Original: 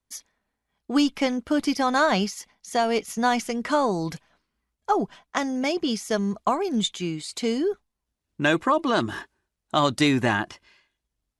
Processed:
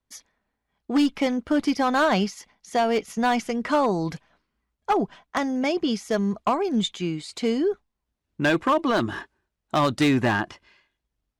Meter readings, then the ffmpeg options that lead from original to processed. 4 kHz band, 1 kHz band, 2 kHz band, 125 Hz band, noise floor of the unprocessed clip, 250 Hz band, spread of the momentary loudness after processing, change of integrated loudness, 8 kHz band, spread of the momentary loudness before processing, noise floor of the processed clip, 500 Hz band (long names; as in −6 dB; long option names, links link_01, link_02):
−2.0 dB, 0.0 dB, −0.5 dB, +1.5 dB, −83 dBFS, +1.0 dB, 9 LU, +0.5 dB, −4.5 dB, 11 LU, −82 dBFS, +1.0 dB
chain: -af "highshelf=frequency=5600:gain=-10.5,volume=16.5dB,asoftclip=hard,volume=-16.5dB,volume=1.5dB"